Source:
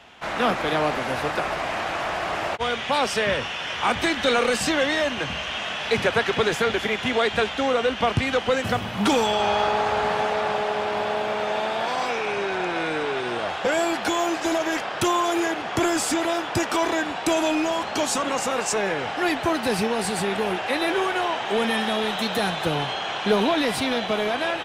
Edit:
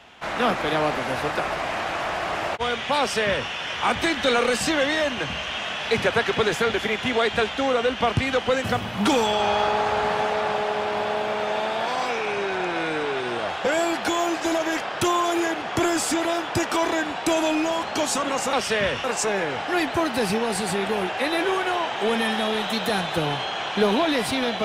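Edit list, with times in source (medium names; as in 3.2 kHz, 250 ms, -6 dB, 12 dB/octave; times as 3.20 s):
2.99–3.50 s: copy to 18.53 s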